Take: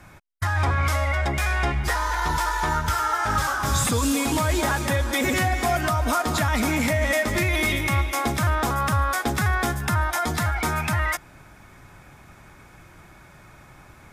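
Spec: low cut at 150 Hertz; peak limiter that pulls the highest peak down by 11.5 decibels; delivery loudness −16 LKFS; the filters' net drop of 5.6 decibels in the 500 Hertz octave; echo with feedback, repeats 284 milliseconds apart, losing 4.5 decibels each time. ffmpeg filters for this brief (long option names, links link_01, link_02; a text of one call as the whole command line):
ffmpeg -i in.wav -af "highpass=150,equalizer=frequency=500:width_type=o:gain=-8,alimiter=limit=-23dB:level=0:latency=1,aecho=1:1:284|568|852|1136|1420|1704|1988|2272|2556:0.596|0.357|0.214|0.129|0.0772|0.0463|0.0278|0.0167|0.01,volume=13dB" out.wav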